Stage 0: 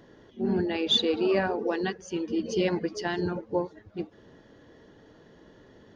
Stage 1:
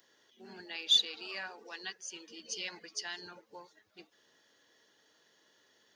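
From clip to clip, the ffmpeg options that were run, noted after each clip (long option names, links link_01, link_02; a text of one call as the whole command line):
ffmpeg -i in.wav -filter_complex "[0:a]aderivative,acrossover=split=190|780|2700[link_01][link_02][link_03][link_04];[link_02]alimiter=level_in=28dB:limit=-24dB:level=0:latency=1:release=214,volume=-28dB[link_05];[link_01][link_05][link_03][link_04]amix=inputs=4:normalize=0,volume=4.5dB" out.wav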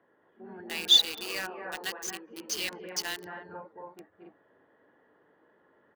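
ffmpeg -i in.wav -filter_complex "[0:a]acrossover=split=1600[link_01][link_02];[link_01]aecho=1:1:227.4|271.1:0.708|0.708[link_03];[link_02]acrusher=bits=6:mix=0:aa=0.000001[link_04];[link_03][link_04]amix=inputs=2:normalize=0,volume=6dB" out.wav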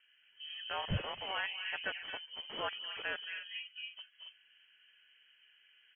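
ffmpeg -i in.wav -af "lowpass=frequency=2900:width_type=q:width=0.5098,lowpass=frequency=2900:width_type=q:width=0.6013,lowpass=frequency=2900:width_type=q:width=0.9,lowpass=frequency=2900:width_type=q:width=2.563,afreqshift=-3400,volume=-1dB" out.wav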